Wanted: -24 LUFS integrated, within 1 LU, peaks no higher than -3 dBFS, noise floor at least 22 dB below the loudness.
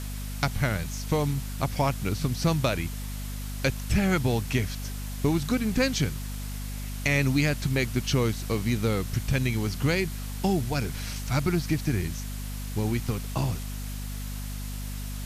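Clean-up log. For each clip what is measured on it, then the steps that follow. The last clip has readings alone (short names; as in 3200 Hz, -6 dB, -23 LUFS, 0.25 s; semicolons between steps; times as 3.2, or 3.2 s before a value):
hum 50 Hz; harmonics up to 250 Hz; hum level -32 dBFS; noise floor -34 dBFS; noise floor target -51 dBFS; loudness -28.5 LUFS; peak -9.0 dBFS; loudness target -24.0 LUFS
-> de-hum 50 Hz, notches 5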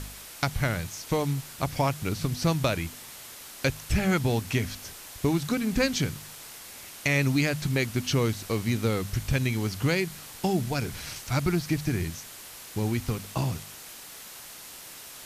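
hum none; noise floor -45 dBFS; noise floor target -50 dBFS
-> noise print and reduce 6 dB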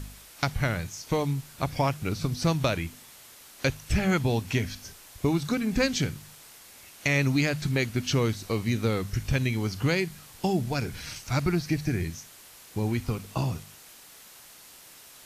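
noise floor -50 dBFS; noise floor target -51 dBFS
-> noise print and reduce 6 dB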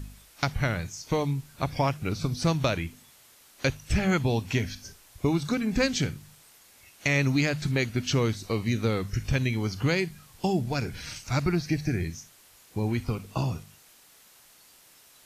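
noise floor -56 dBFS; loudness -28.5 LUFS; peak -9.5 dBFS; loudness target -24.0 LUFS
-> gain +4.5 dB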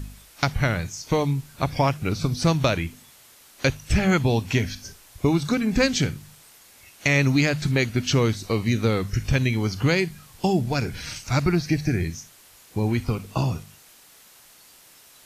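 loudness -24.0 LUFS; peak -5.0 dBFS; noise floor -52 dBFS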